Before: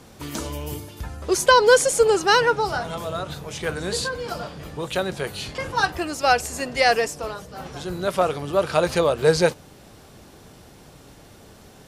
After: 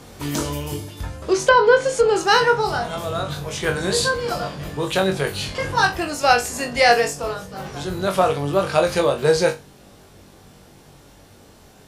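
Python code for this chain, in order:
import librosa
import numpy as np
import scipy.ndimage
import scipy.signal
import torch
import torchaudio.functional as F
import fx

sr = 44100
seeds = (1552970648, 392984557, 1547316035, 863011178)

y = fx.room_flutter(x, sr, wall_m=3.6, rt60_s=0.23)
y = fx.rider(y, sr, range_db=3, speed_s=2.0)
y = fx.env_lowpass_down(y, sr, base_hz=2300.0, full_db=-10.5, at=(0.65, 2.16))
y = y * librosa.db_to_amplitude(1.0)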